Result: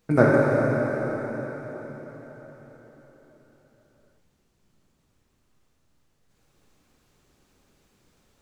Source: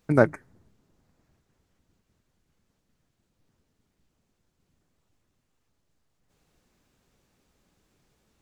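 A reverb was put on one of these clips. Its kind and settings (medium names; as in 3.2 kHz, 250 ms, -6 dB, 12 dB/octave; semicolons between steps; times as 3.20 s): plate-style reverb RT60 4.7 s, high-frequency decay 0.95×, DRR -5.5 dB; trim -1 dB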